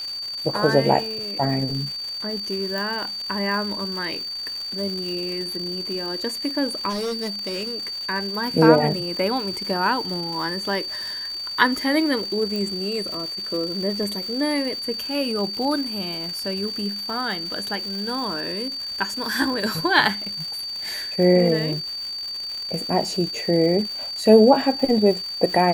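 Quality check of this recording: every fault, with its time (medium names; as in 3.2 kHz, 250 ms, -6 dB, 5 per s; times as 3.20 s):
crackle 340 per s -30 dBFS
whine 4.6 kHz -28 dBFS
2.78 s: pop
6.89–7.75 s: clipped -23.5 dBFS
12.56 s: pop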